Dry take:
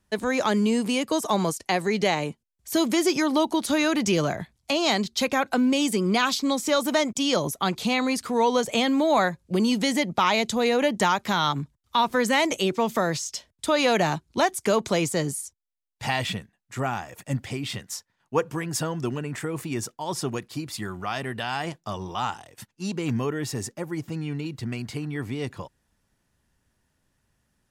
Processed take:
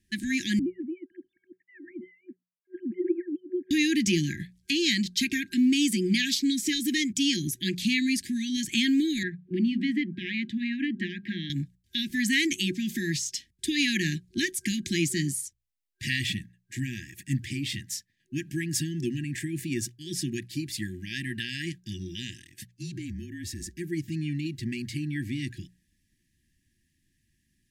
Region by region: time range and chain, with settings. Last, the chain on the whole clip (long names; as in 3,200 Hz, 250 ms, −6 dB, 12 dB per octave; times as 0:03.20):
0:00.59–0:03.71: three sine waves on the formant tracks + Butterworth low-pass 1,200 Hz + spectral tilt +3 dB per octave
0:09.23–0:11.50: high-pass filter 140 Hz + high-frequency loss of the air 480 metres + mains-hum notches 50/100/150/200/250 Hz
0:22.70–0:23.77: parametric band 2,700 Hz −4 dB 0.38 octaves + downward compressor 10 to 1, threshold −32 dBFS + frequency shifter −37 Hz
whole clip: brick-wall band-stop 370–1,600 Hz; mains-hum notches 60/120/180 Hz